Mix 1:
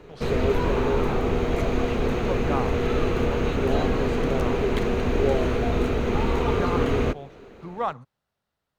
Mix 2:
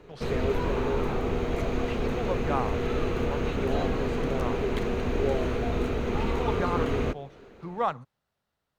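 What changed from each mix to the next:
background −4.5 dB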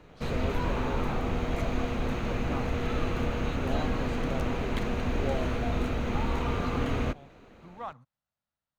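speech −11.0 dB
master: add parametric band 410 Hz −10 dB 0.41 octaves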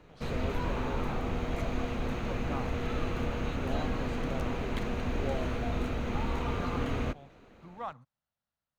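background −3.0 dB

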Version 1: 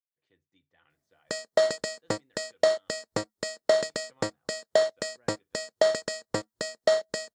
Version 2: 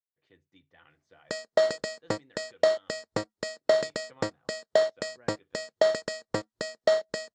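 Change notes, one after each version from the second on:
speech +8.5 dB
master: add high-frequency loss of the air 62 metres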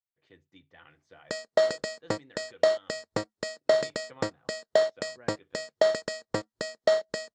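speech +4.5 dB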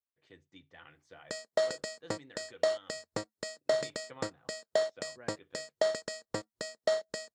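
background −6.5 dB
master: remove high-frequency loss of the air 62 metres

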